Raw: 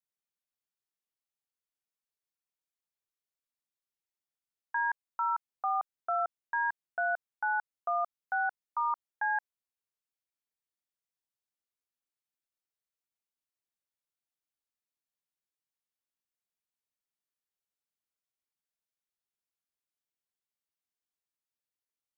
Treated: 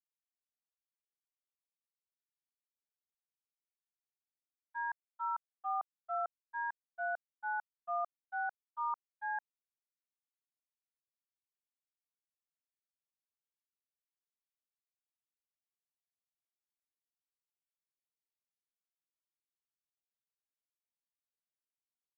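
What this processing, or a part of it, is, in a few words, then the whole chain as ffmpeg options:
hearing-loss simulation: -af "lowpass=1700,agate=range=-33dB:threshold=-24dB:ratio=3:detection=peak,volume=1.5dB"

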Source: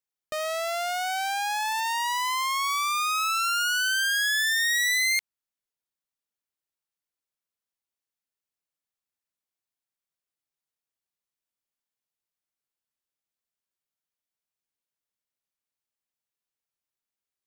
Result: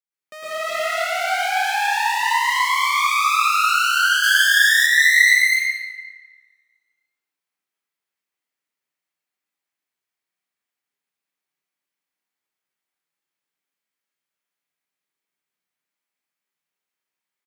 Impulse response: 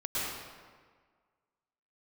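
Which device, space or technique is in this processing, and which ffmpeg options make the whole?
stadium PA: -filter_complex "[0:a]highpass=frequency=140:width=0.5412,highpass=frequency=140:width=1.3066,equalizer=frequency=2000:width_type=o:width=0.84:gain=6,aecho=1:1:253.6|285.7:1|0.708[link_01];[1:a]atrim=start_sample=2205[link_02];[link_01][link_02]afir=irnorm=-1:irlink=0,asettb=1/sr,asplit=3[link_03][link_04][link_05];[link_03]atrim=end=4.234[link_06];[link_04]atrim=start=4.23:end=4.86,asetpts=PTS-STARTPTS,afade=type=in:duration=0.004:curve=qsin,afade=type=out:start_time=0.626:duration=0.004:curve=qsin,highshelf=frequency=4300:gain=5[link_07];[link_05]atrim=start=4.856[link_08];[link_06][link_07]acrossfade=duration=0.004:curve1=hsin:curve2=qsin[link_09];[link_09][link_08]acrossfade=duration=0.004:curve1=qsin:curve2=hsin,volume=-5.5dB"

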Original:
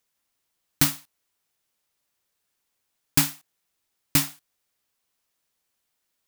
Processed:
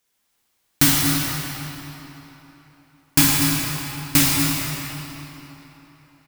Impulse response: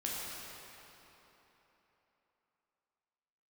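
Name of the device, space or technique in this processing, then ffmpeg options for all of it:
cave: -filter_complex "[0:a]aecho=1:1:244:0.299[link_01];[1:a]atrim=start_sample=2205[link_02];[link_01][link_02]afir=irnorm=-1:irlink=0,volume=5.5dB"

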